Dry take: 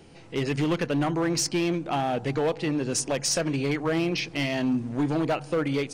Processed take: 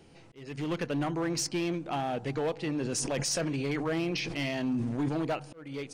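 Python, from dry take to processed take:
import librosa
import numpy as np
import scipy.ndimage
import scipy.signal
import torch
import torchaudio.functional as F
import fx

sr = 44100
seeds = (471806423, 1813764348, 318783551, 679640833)

y = fx.auto_swell(x, sr, attack_ms=458.0)
y = fx.sustainer(y, sr, db_per_s=25.0, at=(2.69, 5.09))
y = F.gain(torch.from_numpy(y), -5.5).numpy()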